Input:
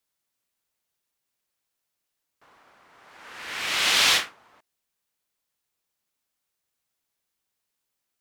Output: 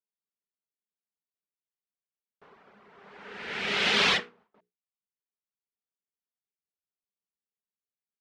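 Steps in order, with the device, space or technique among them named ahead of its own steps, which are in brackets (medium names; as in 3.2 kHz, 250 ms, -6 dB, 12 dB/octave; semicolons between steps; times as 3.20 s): inside a cardboard box (low-pass 3.5 kHz 12 dB/octave; small resonant body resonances 200/410 Hz, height 16 dB, ringing for 70 ms); reverb removal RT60 0.8 s; hum notches 60/120/180/240/300/360/420/480 Hz; gate with hold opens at -53 dBFS; 3.22–3.97 s: band-stop 1.1 kHz, Q 6.6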